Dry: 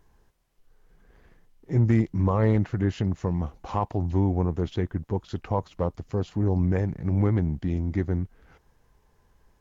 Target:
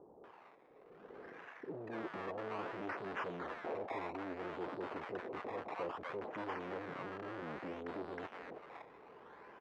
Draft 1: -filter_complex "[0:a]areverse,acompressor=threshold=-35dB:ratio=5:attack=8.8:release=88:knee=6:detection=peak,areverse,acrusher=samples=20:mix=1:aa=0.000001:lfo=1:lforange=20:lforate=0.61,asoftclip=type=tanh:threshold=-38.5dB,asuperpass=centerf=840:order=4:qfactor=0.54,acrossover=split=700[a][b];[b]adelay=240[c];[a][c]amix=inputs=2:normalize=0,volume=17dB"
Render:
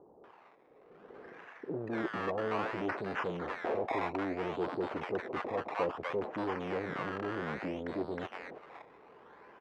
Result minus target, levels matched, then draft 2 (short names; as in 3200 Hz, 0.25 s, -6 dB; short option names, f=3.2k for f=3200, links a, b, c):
soft clip: distortion -6 dB
-filter_complex "[0:a]areverse,acompressor=threshold=-35dB:ratio=5:attack=8.8:release=88:knee=6:detection=peak,areverse,acrusher=samples=20:mix=1:aa=0.000001:lfo=1:lforange=20:lforate=0.61,asoftclip=type=tanh:threshold=-49.5dB,asuperpass=centerf=840:order=4:qfactor=0.54,acrossover=split=700[a][b];[b]adelay=240[c];[a][c]amix=inputs=2:normalize=0,volume=17dB"